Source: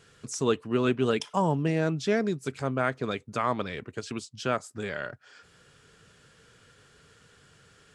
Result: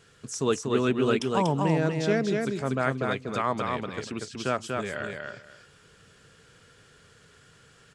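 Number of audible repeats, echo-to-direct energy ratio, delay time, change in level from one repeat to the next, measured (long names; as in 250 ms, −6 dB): 2, −3.5 dB, 240 ms, −14.5 dB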